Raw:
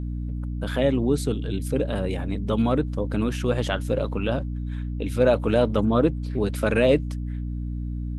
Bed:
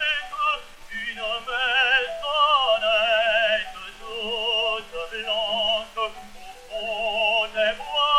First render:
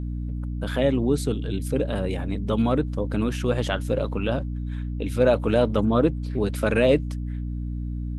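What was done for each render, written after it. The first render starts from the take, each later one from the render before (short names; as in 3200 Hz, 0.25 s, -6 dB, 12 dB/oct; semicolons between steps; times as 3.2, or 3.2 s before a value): nothing audible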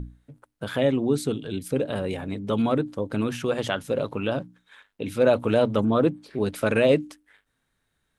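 notches 60/120/180/240/300 Hz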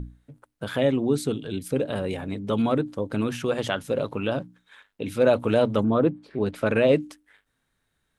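5.82–6.93 LPF 1800 Hz -> 3700 Hz 6 dB/oct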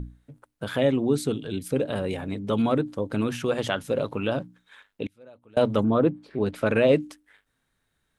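5.06–5.57 flipped gate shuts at -27 dBFS, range -30 dB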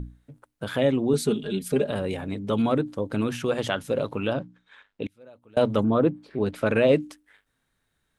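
1.13–1.91 comb 4.9 ms, depth 91%; 4.33–5.03 air absorption 89 m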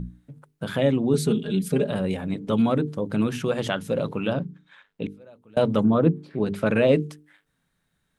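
bell 170 Hz +11 dB 0.57 oct; notches 50/100/150/200/250/300/350/400/450 Hz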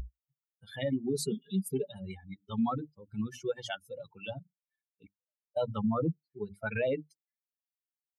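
per-bin expansion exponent 3; limiter -22.5 dBFS, peak gain reduction 11 dB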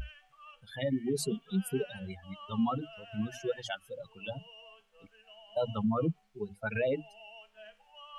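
add bed -30 dB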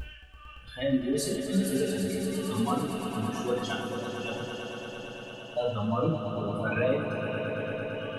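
swelling echo 0.113 s, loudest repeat 5, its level -10.5 dB; non-linear reverb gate 0.16 s falling, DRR -1 dB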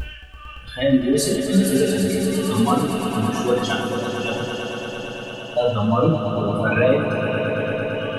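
gain +10 dB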